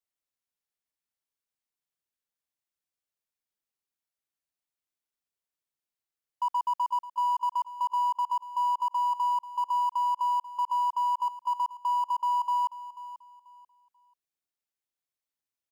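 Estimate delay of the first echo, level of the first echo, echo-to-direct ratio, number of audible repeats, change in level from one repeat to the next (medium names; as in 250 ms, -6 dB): 488 ms, -15.0 dB, -14.5 dB, 2, -11.5 dB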